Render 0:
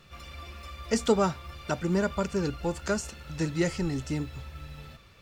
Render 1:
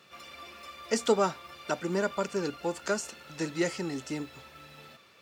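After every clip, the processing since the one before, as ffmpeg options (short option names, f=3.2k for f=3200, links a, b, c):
-af "highpass=270"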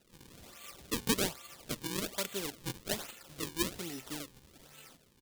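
-af "acrusher=samples=38:mix=1:aa=0.000001:lfo=1:lforange=60.8:lforate=1.2,firequalizer=gain_entry='entry(1100,0);entry(3400,10);entry(8900,13)':delay=0.05:min_phase=1,volume=-9dB"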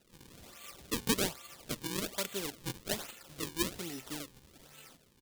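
-af anull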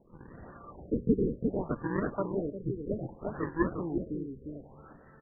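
-filter_complex "[0:a]asplit=2[a][b];[b]aecho=0:1:353:0.562[c];[a][c]amix=inputs=2:normalize=0,afftfilt=real='re*lt(b*sr/1024,490*pow(2000/490,0.5+0.5*sin(2*PI*0.64*pts/sr)))':imag='im*lt(b*sr/1024,490*pow(2000/490,0.5+0.5*sin(2*PI*0.64*pts/sr)))':win_size=1024:overlap=0.75,volume=7.5dB"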